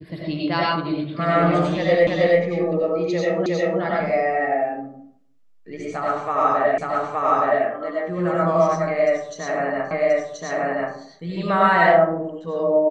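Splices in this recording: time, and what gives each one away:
2.07 repeat of the last 0.32 s
3.46 repeat of the last 0.36 s
6.78 repeat of the last 0.87 s
9.91 repeat of the last 1.03 s

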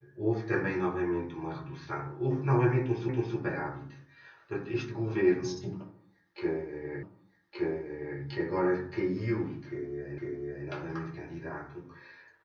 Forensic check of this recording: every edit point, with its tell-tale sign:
3.09 repeat of the last 0.28 s
7.03 repeat of the last 1.17 s
10.18 repeat of the last 0.5 s

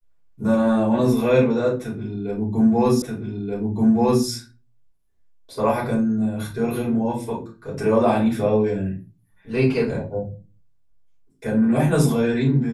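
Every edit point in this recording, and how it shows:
3.02 repeat of the last 1.23 s

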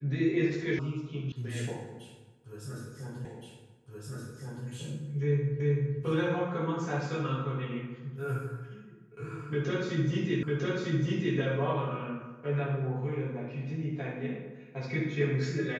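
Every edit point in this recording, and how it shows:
0.79 sound cut off
1.32 sound cut off
3.25 repeat of the last 1.42 s
5.6 repeat of the last 0.38 s
10.43 repeat of the last 0.95 s

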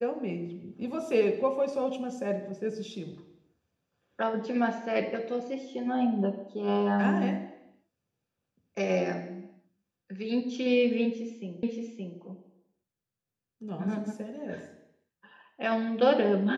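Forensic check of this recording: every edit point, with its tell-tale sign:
11.63 repeat of the last 0.57 s

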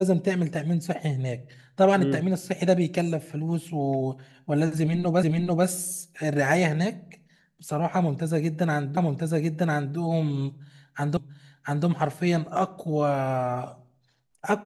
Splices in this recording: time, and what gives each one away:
5.23 repeat of the last 0.44 s
8.97 repeat of the last 1 s
11.17 repeat of the last 0.69 s

